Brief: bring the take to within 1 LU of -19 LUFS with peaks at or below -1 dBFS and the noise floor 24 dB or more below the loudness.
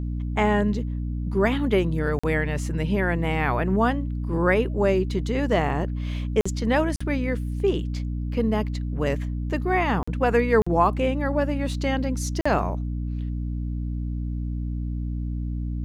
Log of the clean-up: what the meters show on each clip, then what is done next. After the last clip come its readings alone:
dropouts 6; longest dropout 45 ms; hum 60 Hz; highest harmonic 300 Hz; hum level -26 dBFS; loudness -25.0 LUFS; peak level -7.5 dBFS; loudness target -19.0 LUFS
-> interpolate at 2.19/6.41/6.96/10.03/10.62/12.41 s, 45 ms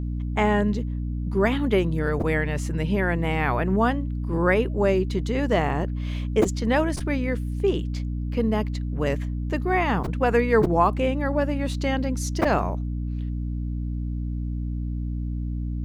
dropouts 0; hum 60 Hz; highest harmonic 300 Hz; hum level -26 dBFS
-> hum notches 60/120/180/240/300 Hz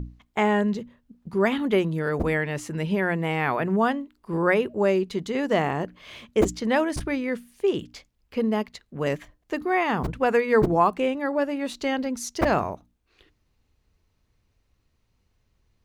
hum not found; loudness -25.0 LUFS; peak level -8.0 dBFS; loudness target -19.0 LUFS
-> trim +6 dB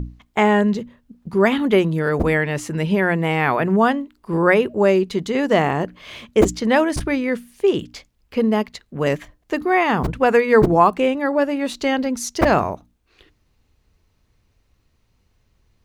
loudness -19.0 LUFS; peak level -2.0 dBFS; noise floor -65 dBFS

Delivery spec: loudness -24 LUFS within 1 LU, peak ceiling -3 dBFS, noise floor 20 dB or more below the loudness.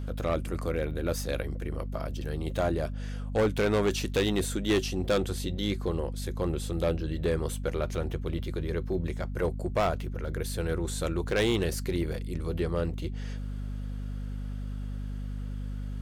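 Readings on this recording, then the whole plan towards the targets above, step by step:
clipped samples 0.9%; clipping level -20.0 dBFS; hum 50 Hz; highest harmonic 250 Hz; hum level -32 dBFS; loudness -31.0 LUFS; peak level -20.0 dBFS; loudness target -24.0 LUFS
-> clip repair -20 dBFS; hum notches 50/100/150/200/250 Hz; trim +7 dB

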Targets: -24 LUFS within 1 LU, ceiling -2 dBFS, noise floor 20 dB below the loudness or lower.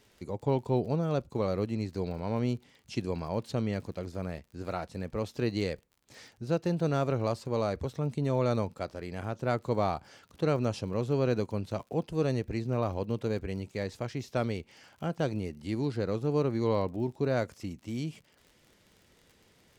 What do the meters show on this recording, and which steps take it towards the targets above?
tick rate 45 per s; loudness -32.5 LUFS; peak level -15.5 dBFS; loudness target -24.0 LUFS
-> de-click; trim +8.5 dB

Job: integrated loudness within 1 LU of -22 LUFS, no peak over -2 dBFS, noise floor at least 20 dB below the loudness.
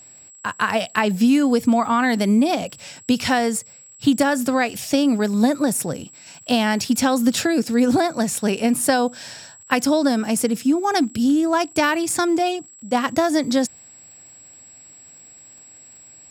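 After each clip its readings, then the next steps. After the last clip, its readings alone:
tick rate 33 per s; steady tone 7.7 kHz; tone level -43 dBFS; loudness -20.0 LUFS; peak level -3.0 dBFS; loudness target -22.0 LUFS
-> de-click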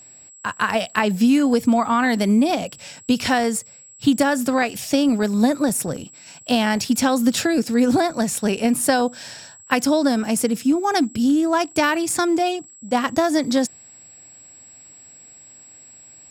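tick rate 0.92 per s; steady tone 7.7 kHz; tone level -43 dBFS
-> band-stop 7.7 kHz, Q 30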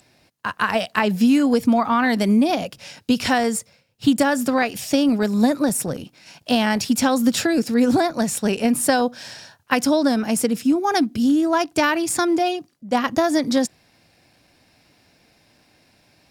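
steady tone not found; loudness -20.0 LUFS; peak level -3.0 dBFS; loudness target -22.0 LUFS
-> trim -2 dB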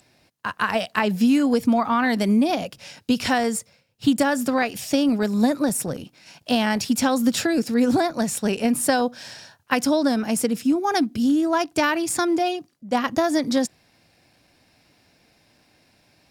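loudness -22.0 LUFS; peak level -5.0 dBFS; noise floor -62 dBFS

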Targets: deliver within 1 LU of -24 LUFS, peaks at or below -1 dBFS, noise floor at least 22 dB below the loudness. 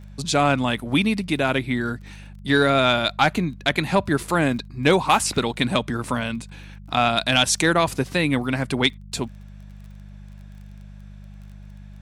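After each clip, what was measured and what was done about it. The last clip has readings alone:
tick rate 23 per s; hum 50 Hz; highest harmonic 200 Hz; hum level -39 dBFS; loudness -21.5 LUFS; peak level -5.5 dBFS; loudness target -24.0 LUFS
-> de-click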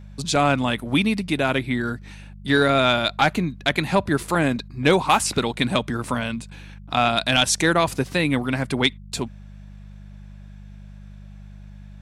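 tick rate 0 per s; hum 50 Hz; highest harmonic 200 Hz; hum level -39 dBFS
-> de-hum 50 Hz, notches 4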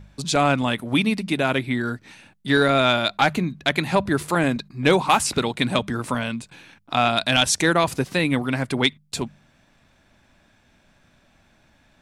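hum not found; loudness -21.5 LUFS; peak level -5.5 dBFS; loudness target -24.0 LUFS
-> trim -2.5 dB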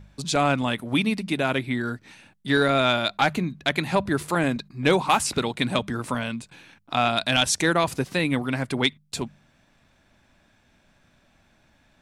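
loudness -24.0 LUFS; peak level -8.0 dBFS; noise floor -62 dBFS

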